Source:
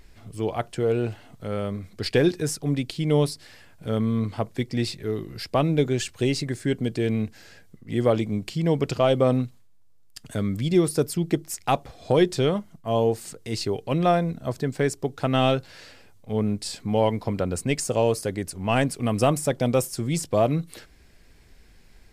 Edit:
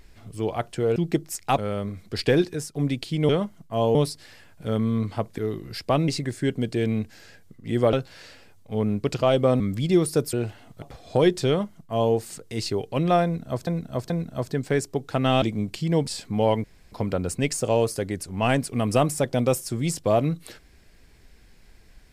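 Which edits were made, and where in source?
0.96–1.45 swap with 11.15–11.77
2.25–2.62 fade out, to -10 dB
4.59–5.03 cut
5.73–6.31 cut
8.16–8.81 swap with 15.51–16.62
9.37–10.42 cut
12.43–13.09 copy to 3.16
14.19–14.62 loop, 3 plays
17.19 insert room tone 0.28 s

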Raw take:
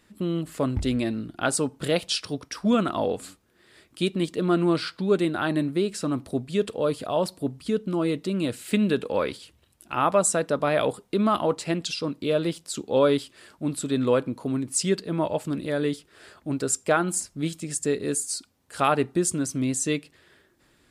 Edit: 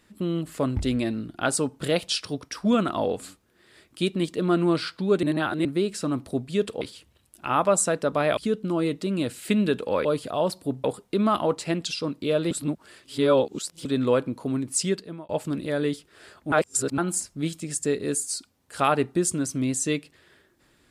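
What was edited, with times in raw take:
5.23–5.65 reverse
6.81–7.6 swap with 9.28–10.84
12.51–13.85 reverse
14.82–15.29 fade out
16.52–16.98 reverse

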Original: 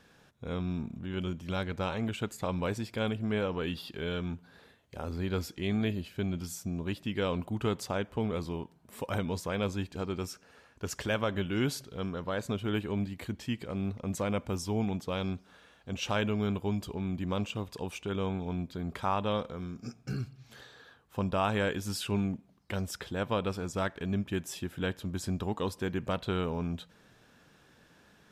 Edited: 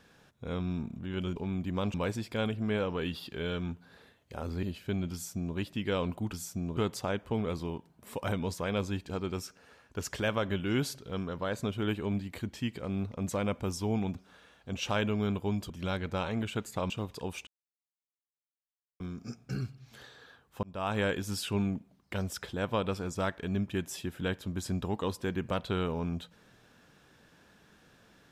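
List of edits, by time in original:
1.36–2.56 swap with 16.9–17.48
5.25–5.93 cut
6.43–6.87 copy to 7.63
15.01–15.35 cut
18.05–19.58 mute
21.21–21.58 fade in

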